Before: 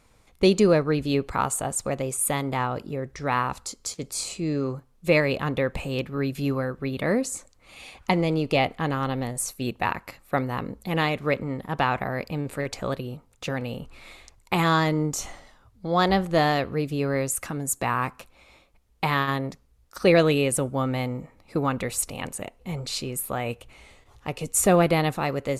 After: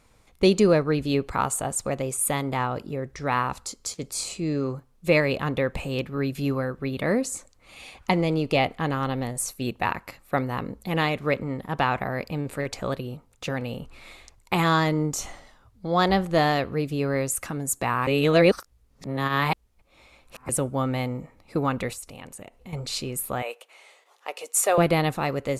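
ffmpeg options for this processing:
-filter_complex "[0:a]asettb=1/sr,asplit=3[s0][s1][s2];[s0]atrim=end=21.934[s3];[s1]atrim=start=21.93:end=22.73,asetpts=PTS-STARTPTS,afade=t=in:d=0.004:c=qsin,afade=t=out:st=0.796:d=0.004:c=qsin,acompressor=threshold=0.00891:ratio=2.5:attack=3.2:release=140:knee=1:detection=peak[s4];[s2]atrim=start=22.726[s5];[s3][s4]acrossfade=d=0.004:c1=hsin:c2=qsin[s6];[s6][s5]acrossfade=d=0.004:c1=qsin:c2=hsin,asettb=1/sr,asplit=3[s7][s8][s9];[s7]atrim=end=23.424[s10];[s8]atrim=start=23.42:end=24.78,asetpts=PTS-STARTPTS,afade=t=in:d=0.004:c=qsin,afade=t=out:st=1.356:d=0.004:c=qsin,highpass=f=470:w=0.5412,highpass=f=470:w=1.3066[s11];[s9]atrim=start=24.776[s12];[s10][s11]acrossfade=d=0.004:c1=hsin:c2=qsin[s13];[s13][s12]acrossfade=d=0.004:c1=qsin:c2=hsin,asplit=3[s14][s15][s16];[s14]atrim=end=18.072[s17];[s15]atrim=start=18.068:end=20.492,asetpts=PTS-STARTPTS,areverse[s18];[s16]atrim=start=20.488[s19];[s17][s18]acrossfade=d=0.004:c1=hsin:c2=hsin[s20];[s20][s19]acrossfade=d=0.004:c1=hsin:c2=hsin"

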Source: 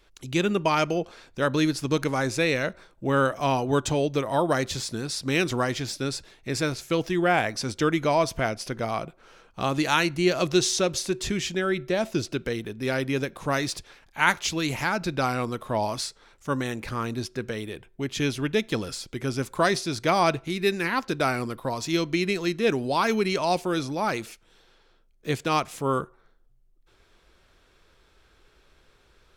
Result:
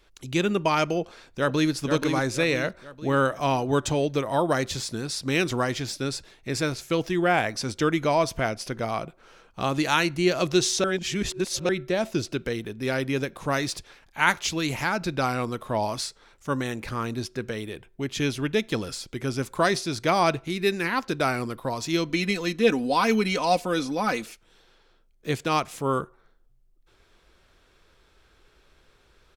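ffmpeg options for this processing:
-filter_complex "[0:a]asplit=2[s0][s1];[s1]afade=t=in:st=1:d=0.01,afade=t=out:st=1.74:d=0.01,aecho=0:1:480|960|1440|1920|2400:0.501187|0.225534|0.10149|0.0456707|0.0205518[s2];[s0][s2]amix=inputs=2:normalize=0,asettb=1/sr,asplit=3[s3][s4][s5];[s3]atrim=end=22.094[s6];[s4]atrim=start=22.09:end=24.25,asetpts=PTS-STARTPTS,afade=t=in:d=0.004:c=qsin,afade=t=out:st=2.156:d=0.004:c=qsin,aecho=1:1:4:0.65,atrim=end_sample=95256[s7];[s5]atrim=start=24.246[s8];[s6][s7]acrossfade=d=0.004:c1=hsin:c2=qsin[s9];[s9][s8]acrossfade=d=0.004:c1=qsin:c2=hsin,asplit=3[s10][s11][s12];[s10]atrim=end=10.842[s13];[s11]atrim=start=10.838:end=11.692,asetpts=PTS-STARTPTS,areverse[s14];[s12]atrim=start=11.688[s15];[s13][s14]acrossfade=d=0.004:c1=hsin:c2=hsin[s16];[s16][s15]acrossfade=d=0.004:c1=hsin:c2=hsin"

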